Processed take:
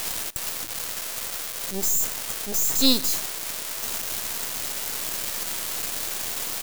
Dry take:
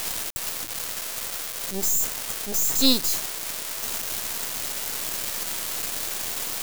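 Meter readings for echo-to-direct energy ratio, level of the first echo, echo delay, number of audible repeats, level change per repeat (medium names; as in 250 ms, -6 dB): -23.0 dB, -23.5 dB, 129 ms, 1, -11.0 dB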